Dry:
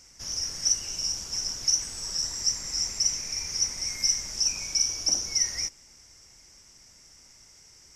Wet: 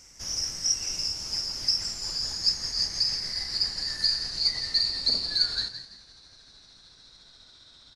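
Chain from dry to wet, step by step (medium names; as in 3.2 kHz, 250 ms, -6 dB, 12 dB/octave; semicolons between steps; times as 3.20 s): pitch bend over the whole clip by -6.5 st starting unshifted; frequency-shifting echo 167 ms, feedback 31%, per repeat +77 Hz, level -11 dB; trim +1.5 dB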